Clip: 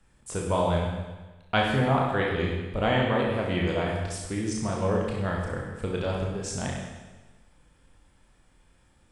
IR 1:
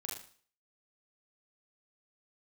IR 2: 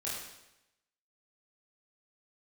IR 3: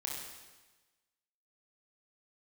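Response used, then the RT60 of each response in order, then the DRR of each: 3; 0.45 s, 0.90 s, 1.2 s; -2.5 dB, -8.0 dB, -2.5 dB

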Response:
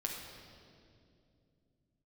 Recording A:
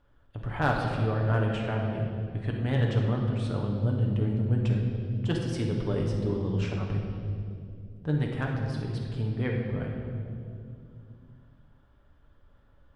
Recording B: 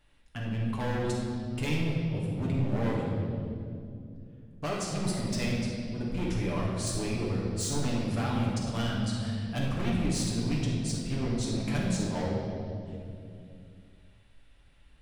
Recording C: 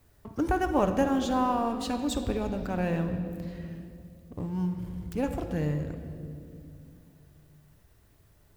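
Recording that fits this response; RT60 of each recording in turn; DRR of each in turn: A; 2.5 s, 2.5 s, 2.6 s; -1.0 dB, -5.0 dB, 6.0 dB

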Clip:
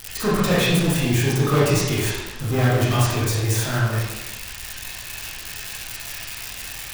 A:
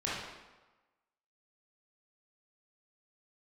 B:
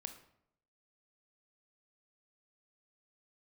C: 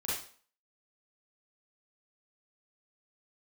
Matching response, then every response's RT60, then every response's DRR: A; 1.2 s, 0.75 s, 0.45 s; -8.0 dB, 7.0 dB, -8.5 dB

